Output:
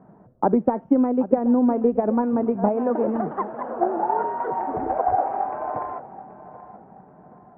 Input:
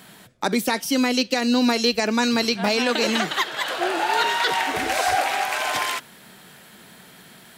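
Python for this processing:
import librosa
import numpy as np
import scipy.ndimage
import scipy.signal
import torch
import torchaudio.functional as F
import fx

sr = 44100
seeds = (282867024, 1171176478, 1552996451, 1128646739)

y = fx.transient(x, sr, attack_db=8, sustain_db=3)
y = scipy.signal.sosfilt(scipy.signal.cheby2(4, 70, 4100.0, 'lowpass', fs=sr, output='sos'), y)
y = fx.echo_feedback(y, sr, ms=779, feedback_pct=37, wet_db=-16.0)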